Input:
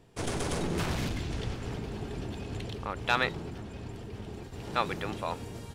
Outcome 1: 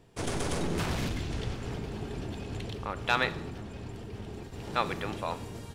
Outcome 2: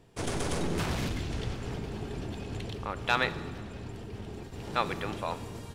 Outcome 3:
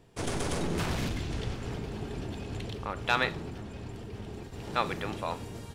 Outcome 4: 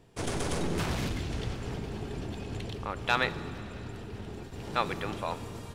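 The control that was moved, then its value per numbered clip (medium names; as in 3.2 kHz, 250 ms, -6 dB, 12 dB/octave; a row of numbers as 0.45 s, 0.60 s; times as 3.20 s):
Schroeder reverb, RT60: 0.71 s, 1.7 s, 0.32 s, 3.7 s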